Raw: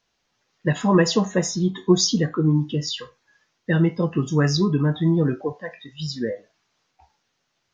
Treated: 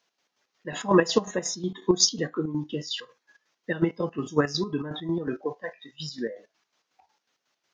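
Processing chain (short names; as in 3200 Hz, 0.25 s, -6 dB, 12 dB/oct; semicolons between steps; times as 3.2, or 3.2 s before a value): HPF 260 Hz 12 dB/oct; in parallel at +2.5 dB: level quantiser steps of 20 dB; on the sum: chopper 5.5 Hz, depth 60%, duty 50%; gain -4.5 dB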